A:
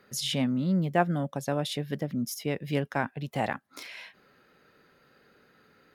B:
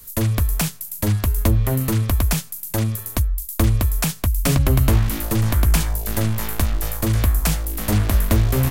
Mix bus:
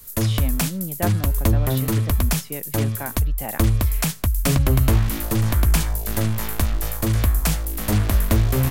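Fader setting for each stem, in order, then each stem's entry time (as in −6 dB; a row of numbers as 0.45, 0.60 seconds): −3.0, −1.0 decibels; 0.05, 0.00 seconds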